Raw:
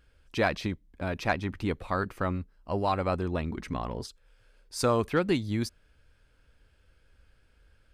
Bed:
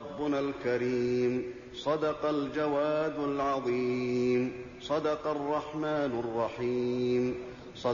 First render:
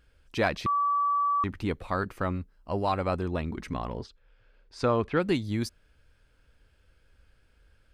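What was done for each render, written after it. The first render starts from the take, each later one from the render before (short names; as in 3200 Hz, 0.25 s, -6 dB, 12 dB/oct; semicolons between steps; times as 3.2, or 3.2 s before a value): 0.66–1.44 bleep 1150 Hz -22.5 dBFS; 4–5.2 LPF 3400 Hz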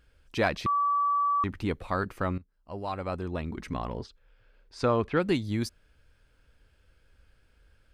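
2.38–3.8 fade in, from -15.5 dB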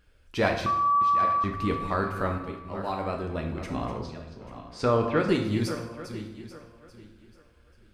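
regenerating reverse delay 0.419 s, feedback 47%, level -10.5 dB; plate-style reverb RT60 0.9 s, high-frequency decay 0.8×, pre-delay 0 ms, DRR 2.5 dB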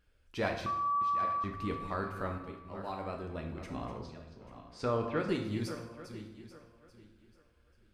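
gain -8.5 dB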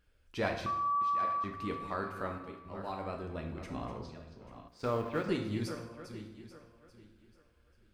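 0.95–2.66 low shelf 110 Hz -9.5 dB; 4.68–5.27 G.711 law mismatch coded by A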